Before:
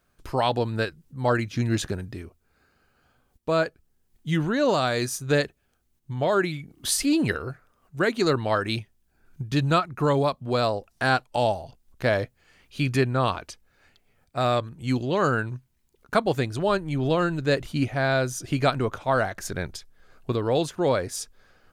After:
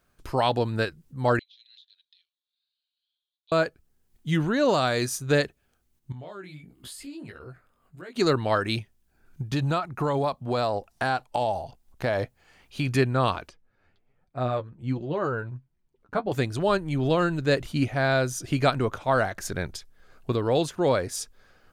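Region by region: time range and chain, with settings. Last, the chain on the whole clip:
0:01.39–0:03.52: flat-topped band-pass 3,700 Hz, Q 4.4 + downward compressor 12 to 1, threshold −50 dBFS
0:06.12–0:08.16: notch filter 5,900 Hz, Q 5.1 + downward compressor 5 to 1, threshold −37 dBFS + chorus effect 1.5 Hz, delay 15.5 ms, depth 5.9 ms
0:09.41–0:12.92: parametric band 800 Hz +6 dB 0.67 octaves + downward compressor 5 to 1, threshold −21 dBFS
0:13.49–0:16.32: low-pass filter 1,200 Hz 6 dB per octave + flanger 1.3 Hz, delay 5.1 ms, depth 6.4 ms, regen +30%
whole clip: no processing

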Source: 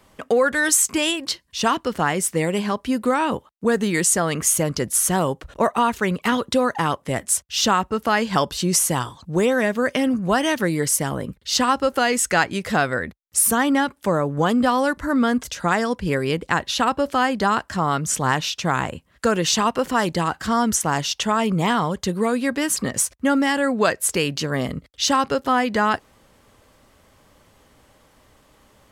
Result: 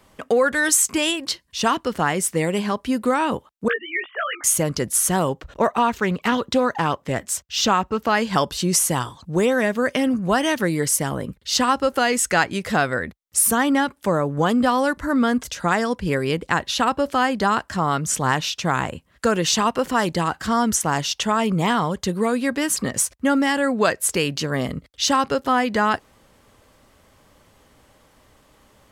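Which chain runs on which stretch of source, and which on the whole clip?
0:03.68–0:04.44: three sine waves on the formant tracks + high-pass filter 1,000 Hz + double-tracking delay 17 ms −3.5 dB
0:05.29–0:08.15: parametric band 10,000 Hz −9.5 dB 0.45 octaves + highs frequency-modulated by the lows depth 0.11 ms
whole clip: no processing

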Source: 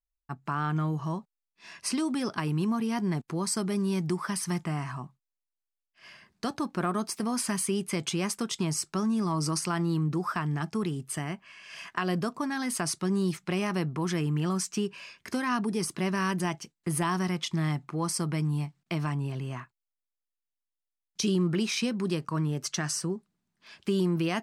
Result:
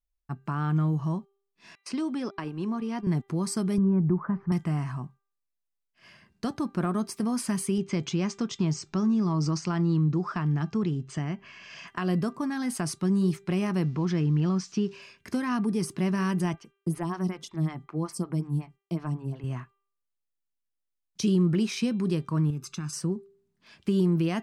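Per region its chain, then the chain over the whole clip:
0:01.75–0:03.07: high-pass filter 280 Hz + noise gate −36 dBFS, range −34 dB + high-frequency loss of the air 75 metres
0:03.78–0:04.52: low-pass filter 1,500 Hz 24 dB per octave + low-shelf EQ 89 Hz +11.5 dB
0:07.78–0:11.88: Butterworth low-pass 7,200 Hz 48 dB per octave + upward compression, threshold −34 dBFS + one half of a high-frequency compander decoder only
0:13.83–0:15.02: spike at every zero crossing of −37 dBFS + Chebyshev low-pass filter 5,400 Hz, order 3
0:16.54–0:19.44: downward expander −55 dBFS + phaser with staggered stages 5.4 Hz
0:22.50–0:22.93: comb filter 0.8 ms, depth 79% + downward compressor 3 to 1, threshold −35 dBFS
whole clip: low-shelf EQ 370 Hz +10 dB; hum removal 395 Hz, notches 10; level −4 dB

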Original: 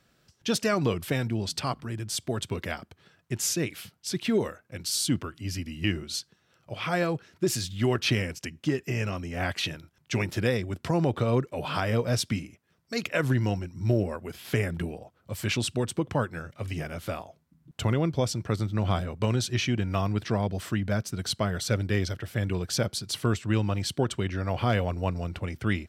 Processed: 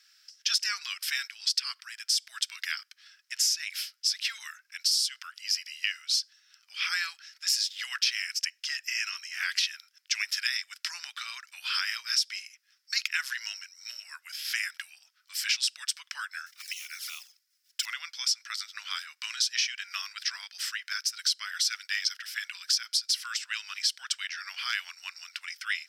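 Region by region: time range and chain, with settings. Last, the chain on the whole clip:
0:16.46–0:17.87: one scale factor per block 5 bits + high-shelf EQ 4,900 Hz +6 dB + flanger swept by the level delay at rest 4.2 ms, full sweep at −29 dBFS
whole clip: Butterworth high-pass 1,500 Hz 36 dB per octave; parametric band 5,200 Hz +14 dB 0.35 octaves; downward compressor 6 to 1, threshold −28 dBFS; level +4.5 dB

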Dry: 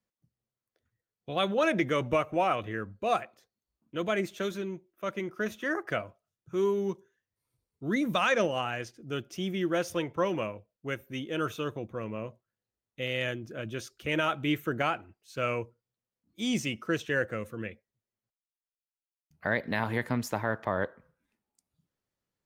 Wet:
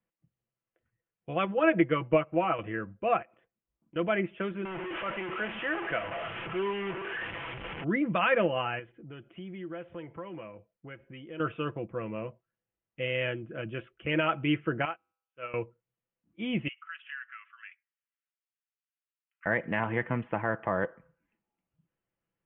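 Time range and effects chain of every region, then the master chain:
0:01.45–0:02.59: comb filter 6.2 ms, depth 50% + expander for the loud parts, over −40 dBFS
0:03.22–0:03.96: downward compressor, threshold −52 dBFS + one half of a high-frequency compander decoder only
0:04.65–0:07.84: linear delta modulator 32 kbit/s, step −28 dBFS + low-shelf EQ 280 Hz −10.5 dB
0:08.79–0:11.40: notch filter 2,700 Hz, Q 15 + downward compressor 2.5 to 1, threshold −45 dBFS
0:14.85–0:15.54: low-shelf EQ 230 Hz −11.5 dB + tuned comb filter 100 Hz, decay 0.82 s, mix 50% + expander for the loud parts 2.5 to 1, over −50 dBFS
0:16.68–0:19.46: Butterworth high-pass 1,200 Hz 48 dB per octave + downward compressor 2 to 1, threshold −45 dBFS
whole clip: Butterworth low-pass 3,100 Hz 96 dB per octave; comb filter 6 ms, depth 38%

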